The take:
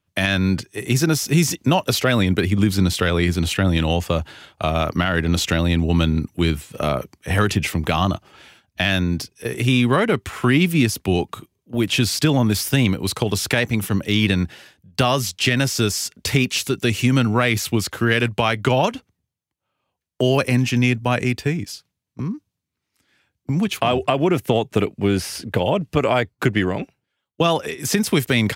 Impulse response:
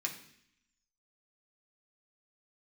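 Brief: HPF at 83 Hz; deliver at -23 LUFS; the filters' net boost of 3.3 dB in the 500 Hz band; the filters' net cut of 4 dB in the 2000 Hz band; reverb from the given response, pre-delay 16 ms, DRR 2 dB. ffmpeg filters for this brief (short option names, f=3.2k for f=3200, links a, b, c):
-filter_complex "[0:a]highpass=83,equalizer=f=500:t=o:g=4.5,equalizer=f=2k:t=o:g=-5.5,asplit=2[a][b];[1:a]atrim=start_sample=2205,adelay=16[c];[b][c]afir=irnorm=-1:irlink=0,volume=-4dB[d];[a][d]amix=inputs=2:normalize=0,volume=-5dB"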